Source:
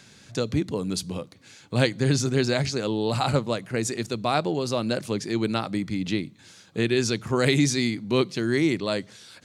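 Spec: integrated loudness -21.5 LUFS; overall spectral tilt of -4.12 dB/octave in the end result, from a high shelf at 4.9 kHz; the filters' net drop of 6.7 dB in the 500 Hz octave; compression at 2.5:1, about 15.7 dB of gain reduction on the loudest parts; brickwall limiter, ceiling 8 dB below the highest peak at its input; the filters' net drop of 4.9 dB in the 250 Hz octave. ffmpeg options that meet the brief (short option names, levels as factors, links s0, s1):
-af "equalizer=f=250:t=o:g=-4,equalizer=f=500:t=o:g=-7.5,highshelf=f=4900:g=4,acompressor=threshold=0.00631:ratio=2.5,volume=11.9,alimiter=limit=0.355:level=0:latency=1"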